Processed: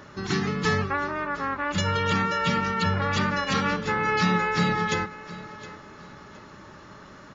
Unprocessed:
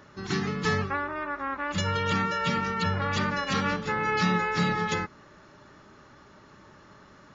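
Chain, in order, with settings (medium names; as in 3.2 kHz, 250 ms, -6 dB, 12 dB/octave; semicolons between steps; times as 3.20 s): in parallel at -1.5 dB: compression, threshold -38 dBFS, peak gain reduction 16 dB; on the sum: feedback delay 715 ms, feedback 32%, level -17 dB; trim +1 dB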